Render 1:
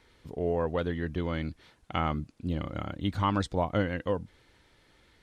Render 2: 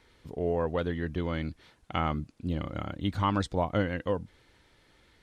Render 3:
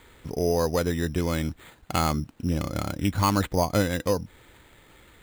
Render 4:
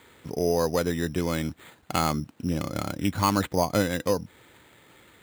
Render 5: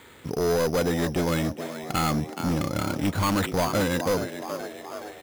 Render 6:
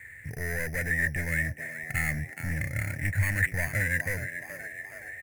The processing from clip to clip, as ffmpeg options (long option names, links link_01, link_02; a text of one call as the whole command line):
ffmpeg -i in.wav -af anull out.wav
ffmpeg -i in.wav -filter_complex "[0:a]asplit=2[link_01][link_02];[link_02]acompressor=threshold=-37dB:ratio=6,volume=-0.5dB[link_03];[link_01][link_03]amix=inputs=2:normalize=0,acrusher=samples=8:mix=1:aa=0.000001,volume=3dB" out.wav
ffmpeg -i in.wav -af "highpass=110" out.wav
ffmpeg -i in.wav -filter_complex "[0:a]asplit=7[link_01][link_02][link_03][link_04][link_05][link_06][link_07];[link_02]adelay=423,afreqshift=72,volume=-14dB[link_08];[link_03]adelay=846,afreqshift=144,volume=-18.4dB[link_09];[link_04]adelay=1269,afreqshift=216,volume=-22.9dB[link_10];[link_05]adelay=1692,afreqshift=288,volume=-27.3dB[link_11];[link_06]adelay=2115,afreqshift=360,volume=-31.7dB[link_12];[link_07]adelay=2538,afreqshift=432,volume=-36.2dB[link_13];[link_01][link_08][link_09][link_10][link_11][link_12][link_13]amix=inputs=7:normalize=0,volume=24.5dB,asoftclip=hard,volume=-24.5dB,volume=4.5dB" out.wav
ffmpeg -i in.wav -af "firequalizer=gain_entry='entry(120,0);entry(190,-16);entry(360,-22);entry(610,-14);entry(1200,-27);entry(1800,13);entry(3200,-24);entry(8700,-3);entry(14000,-6)':delay=0.05:min_phase=1,volume=2dB" out.wav